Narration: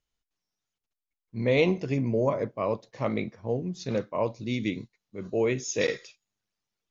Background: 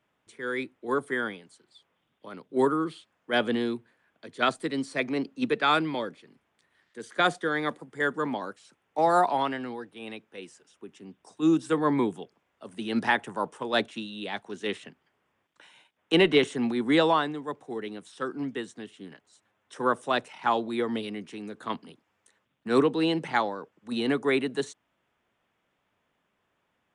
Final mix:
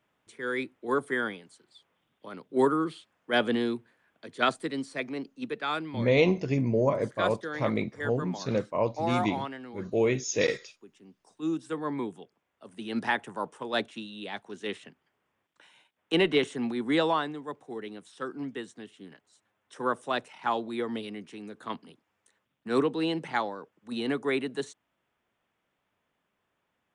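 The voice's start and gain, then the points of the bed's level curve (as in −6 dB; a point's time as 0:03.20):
4.60 s, +0.5 dB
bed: 0:04.40 0 dB
0:05.37 −8 dB
0:11.91 −8 dB
0:13.08 −3.5 dB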